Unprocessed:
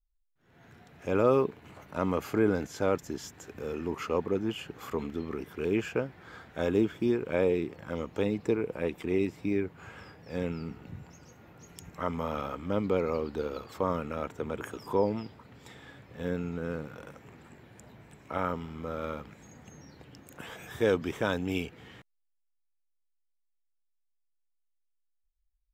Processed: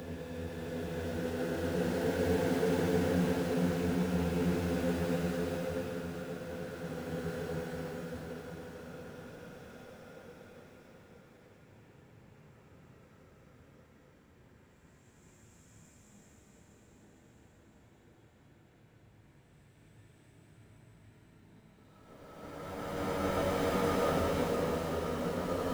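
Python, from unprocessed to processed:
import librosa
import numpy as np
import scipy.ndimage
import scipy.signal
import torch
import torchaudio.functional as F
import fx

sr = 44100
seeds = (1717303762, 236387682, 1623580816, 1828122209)

p1 = fx.dynamic_eq(x, sr, hz=510.0, q=1.7, threshold_db=-39.0, ratio=4.0, max_db=4)
p2 = fx.granulator(p1, sr, seeds[0], grain_ms=100.0, per_s=20.0, spray_ms=255.0, spread_st=0)
p3 = fx.sample_hold(p2, sr, seeds[1], rate_hz=1200.0, jitter_pct=20)
p4 = p2 + (p3 * librosa.db_to_amplitude(-4.0))
p5 = fx.paulstretch(p4, sr, seeds[2], factor=12.0, window_s=0.25, from_s=16.28)
p6 = fx.hum_notches(p5, sr, base_hz=60, count=2)
p7 = p6 + fx.echo_diffused(p6, sr, ms=900, feedback_pct=43, wet_db=-6.0, dry=0)
p8 = fx.band_widen(p7, sr, depth_pct=40)
y = p8 * librosa.db_to_amplitude(-2.5)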